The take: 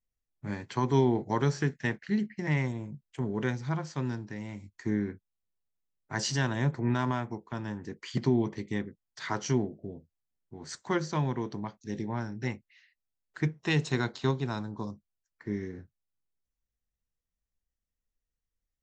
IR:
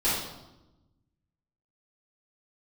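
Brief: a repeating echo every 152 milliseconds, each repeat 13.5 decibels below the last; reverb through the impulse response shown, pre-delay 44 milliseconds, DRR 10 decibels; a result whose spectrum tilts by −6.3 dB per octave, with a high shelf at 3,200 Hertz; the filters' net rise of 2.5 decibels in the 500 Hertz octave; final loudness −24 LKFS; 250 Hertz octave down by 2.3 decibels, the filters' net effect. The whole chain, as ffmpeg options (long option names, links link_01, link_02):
-filter_complex "[0:a]equalizer=frequency=250:width_type=o:gain=-5,equalizer=frequency=500:width_type=o:gain=6,highshelf=frequency=3200:gain=-5,aecho=1:1:152|304:0.211|0.0444,asplit=2[link_01][link_02];[1:a]atrim=start_sample=2205,adelay=44[link_03];[link_02][link_03]afir=irnorm=-1:irlink=0,volume=-22dB[link_04];[link_01][link_04]amix=inputs=2:normalize=0,volume=7.5dB"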